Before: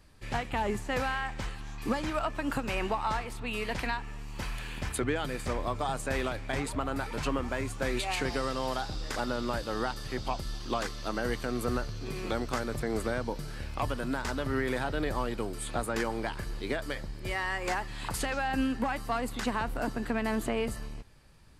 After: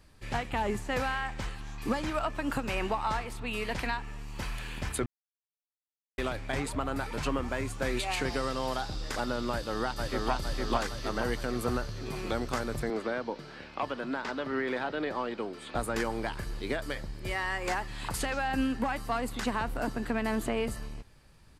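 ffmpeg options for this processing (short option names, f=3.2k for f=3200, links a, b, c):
-filter_complex "[0:a]asplit=2[a][b];[b]afade=t=in:st=9.52:d=0.01,afade=t=out:st=10.31:d=0.01,aecho=0:1:460|920|1380|1840|2300|2760|3220|3680|4140:0.841395|0.504837|0.302902|0.181741|0.109045|0.0654269|0.0392561|0.0235537|0.0141322[c];[a][c]amix=inputs=2:normalize=0,asettb=1/sr,asplit=3[d][e][f];[d]atrim=end=12.904[g];[e]atrim=start=12.9:end=15.75,asetpts=PTS-STARTPTS,afade=t=in:d=0.004:c=qsin,afade=t=out:st=2.846:d=0.004:c=qsin,acrossover=split=180 5100:gain=0.0794 1 0.0891[h][i][j];[h][i][j]amix=inputs=3:normalize=0[k];[f]atrim=start=15.746[l];[g][k]acrossfade=d=0.004:c1=hsin:c2=qsin[m];[m][l]acrossfade=d=0.004:c1=qsin:c2=hsin,asplit=3[n][o][p];[n]atrim=end=5.06,asetpts=PTS-STARTPTS,afade=t=out:st=5.056:d=0.004:c=hsin[q];[o]atrim=start=5.06:end=6.18,asetpts=PTS-STARTPTS,volume=0[r];[p]atrim=start=6.18,asetpts=PTS-STARTPTS,afade=t=in:d=0.004:c=hsin[s];[q][r][s]concat=n=3:v=0:a=1"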